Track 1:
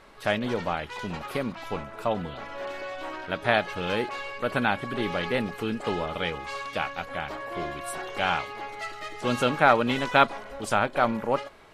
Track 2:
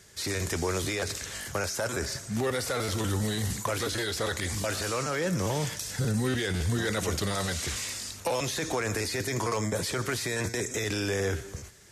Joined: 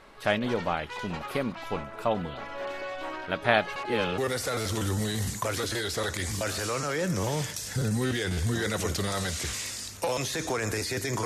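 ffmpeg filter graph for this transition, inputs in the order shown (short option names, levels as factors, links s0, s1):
-filter_complex "[0:a]apad=whole_dur=11.25,atrim=end=11.25,asplit=2[s0][s1];[s0]atrim=end=3.762[s2];[s1]atrim=start=3.758:end=4.182,asetpts=PTS-STARTPTS,areverse[s3];[1:a]atrim=start=2.408:end=9.48[s4];[s2][s3]acrossfade=d=0.004:c1=hsin:c2=hsin[s5];[s5][s4]acrossfade=d=0.004:c1=hsin:c2=hsin"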